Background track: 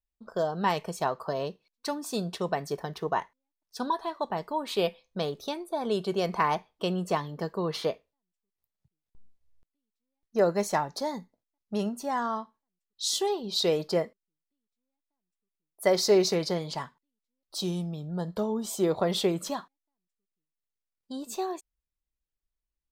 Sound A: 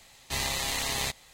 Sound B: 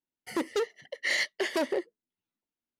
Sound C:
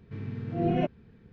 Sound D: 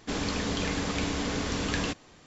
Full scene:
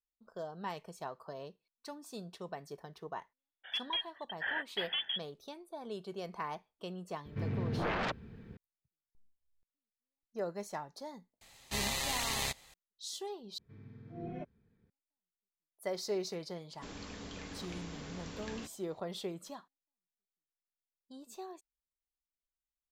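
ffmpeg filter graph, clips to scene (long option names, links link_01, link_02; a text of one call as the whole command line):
ffmpeg -i bed.wav -i cue0.wav -i cue1.wav -i cue2.wav -i cue3.wav -filter_complex "[3:a]asplit=2[link_01][link_02];[0:a]volume=-14dB[link_03];[2:a]lowpass=frequency=3100:width_type=q:width=0.5098,lowpass=frequency=3100:width_type=q:width=0.6013,lowpass=frequency=3100:width_type=q:width=0.9,lowpass=frequency=3100:width_type=q:width=2.563,afreqshift=-3700[link_04];[link_01]aeval=exprs='0.2*sin(PI/2*7.08*val(0)/0.2)':channel_layout=same[link_05];[link_02]asuperstop=centerf=2800:order=4:qfactor=7.2[link_06];[link_03]asplit=2[link_07][link_08];[link_07]atrim=end=13.584[link_09];[link_06]atrim=end=1.32,asetpts=PTS-STARTPTS,volume=-16.5dB[link_10];[link_08]atrim=start=14.896[link_11];[link_04]atrim=end=2.79,asetpts=PTS-STARTPTS,volume=-7.5dB,afade=type=in:duration=0.004:curve=hsin,afade=type=out:start_time=2.786:duration=0.004:curve=hsin,adelay=148617S[link_12];[link_05]atrim=end=1.32,asetpts=PTS-STARTPTS,volume=-17dB,afade=type=in:duration=0.004:curve=hsin,afade=type=out:start_time=1.316:duration=0.004:curve=hsin,adelay=7250[link_13];[1:a]atrim=end=1.33,asetpts=PTS-STARTPTS,volume=-4.5dB,afade=type=in:duration=0.004:curve=hsin,afade=type=out:start_time=1.326:duration=0.004:curve=hsin,adelay=11410[link_14];[4:a]atrim=end=2.26,asetpts=PTS-STARTPTS,volume=-16dB,afade=type=in:duration=0.004:curve=hsin,afade=type=out:start_time=2.256:duration=0.004:curve=hsin,adelay=16740[link_15];[link_09][link_10]acrossfade=duration=0.004:curve1=hsin:curve2=hsin[link_16];[link_16][link_11]acrossfade=duration=0.004:curve1=hsin:curve2=hsin[link_17];[link_17][link_12][link_13][link_14][link_15]amix=inputs=5:normalize=0" out.wav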